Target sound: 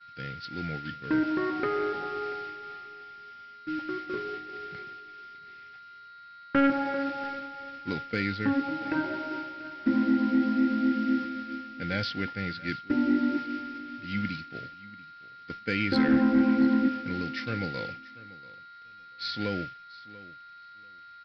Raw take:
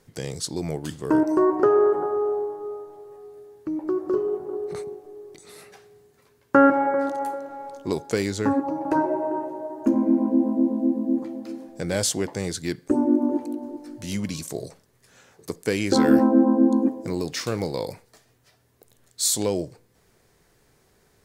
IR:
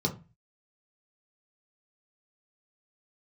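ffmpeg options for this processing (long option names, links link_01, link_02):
-filter_complex "[0:a]aecho=1:1:3.9:0.4,aeval=exprs='val(0)+0.0355*sin(2*PI*1400*n/s)':channel_layout=same,aresample=11025,acrusher=bits=6:mix=0:aa=0.000001,aresample=44100,asoftclip=type=tanh:threshold=-8.5dB,agate=range=-33dB:threshold=-24dB:ratio=3:detection=peak,equalizer=frequency=125:width_type=o:width=1:gain=8,equalizer=frequency=500:width_type=o:width=1:gain=-5,equalizer=frequency=1000:width_type=o:width=1:gain=-8,equalizer=frequency=2000:width_type=o:width=1:gain=10,asplit=2[link_01][link_02];[link_02]aecho=0:1:688|1376:0.106|0.018[link_03];[link_01][link_03]amix=inputs=2:normalize=0,volume=-5.5dB"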